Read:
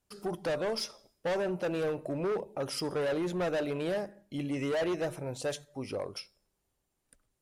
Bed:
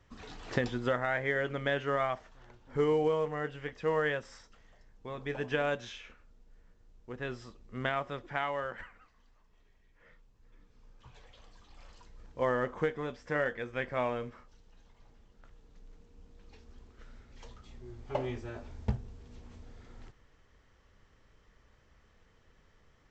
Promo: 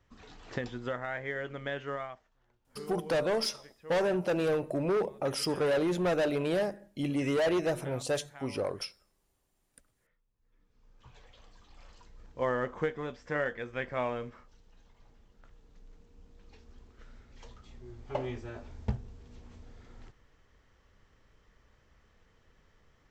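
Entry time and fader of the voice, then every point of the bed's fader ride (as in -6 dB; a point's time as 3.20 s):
2.65 s, +3.0 dB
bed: 1.92 s -5 dB
2.28 s -16.5 dB
10.26 s -16.5 dB
11.07 s -0.5 dB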